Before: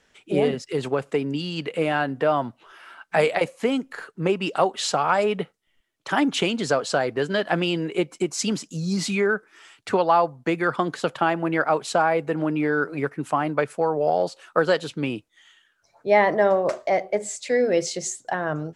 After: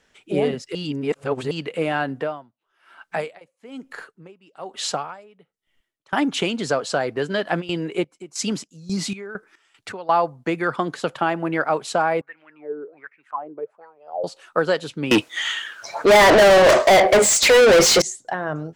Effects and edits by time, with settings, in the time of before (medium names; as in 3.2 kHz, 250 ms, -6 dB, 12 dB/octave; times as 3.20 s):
0.75–1.51 s: reverse
2.14–6.13 s: logarithmic tremolo 1.1 Hz, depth 28 dB
7.60–10.13 s: square tremolo 1.3 Hz -> 3.1 Hz
12.21–14.24 s: wah-wah 1.3 Hz 360–2500 Hz, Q 7.1
15.11–18.02 s: overdrive pedal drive 37 dB, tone 5.1 kHz, clips at -5.5 dBFS